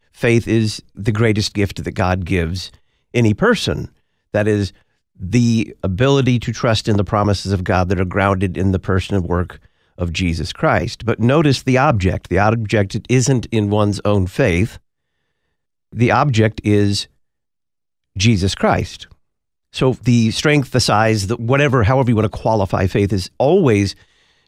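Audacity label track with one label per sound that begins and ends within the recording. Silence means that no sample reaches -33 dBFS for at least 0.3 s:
3.140000	3.860000	sound
4.340000	4.690000	sound
5.200000	9.560000	sound
9.980000	14.770000	sound
15.930000	17.040000	sound
18.160000	19.120000	sound
19.740000	23.920000	sound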